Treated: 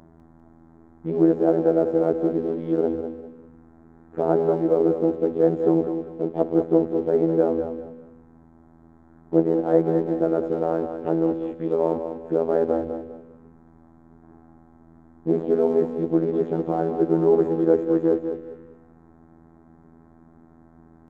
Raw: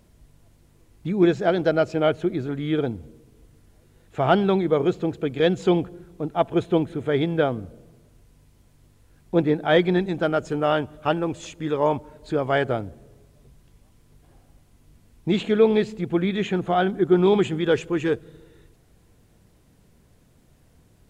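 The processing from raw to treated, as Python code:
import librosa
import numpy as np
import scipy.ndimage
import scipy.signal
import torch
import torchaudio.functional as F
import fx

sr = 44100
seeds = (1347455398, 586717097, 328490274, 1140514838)

p1 = fx.bin_compress(x, sr, power=0.6)
p2 = fx.curve_eq(p1, sr, hz=(150.0, 430.0, 4500.0), db=(0, 8, -22))
p3 = fx.env_phaser(p2, sr, low_hz=430.0, high_hz=3000.0, full_db=-10.0)
p4 = np.sign(p3) * np.maximum(np.abs(p3) - 10.0 ** (-29.5 / 20.0), 0.0)
p5 = p3 + F.gain(torch.from_numpy(p4), -10.5).numpy()
p6 = fx.robotise(p5, sr, hz=82.0)
p7 = p6 + fx.echo_feedback(p6, sr, ms=199, feedback_pct=29, wet_db=-8.5, dry=0)
y = F.gain(torch.from_numpy(p7), -7.5).numpy()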